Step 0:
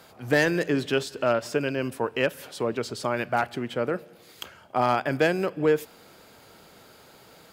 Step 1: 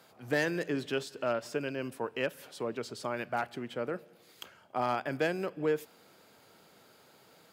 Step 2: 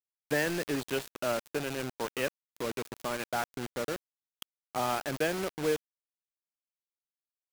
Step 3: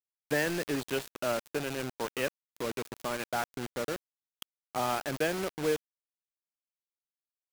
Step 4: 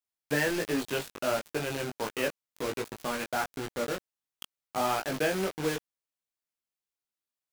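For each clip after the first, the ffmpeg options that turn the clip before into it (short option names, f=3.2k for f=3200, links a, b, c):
-af "highpass=110,volume=-8dB"
-af "acrusher=bits=5:mix=0:aa=0.000001"
-af anull
-af "flanger=delay=18.5:depth=2.6:speed=1.4,volume=5dB"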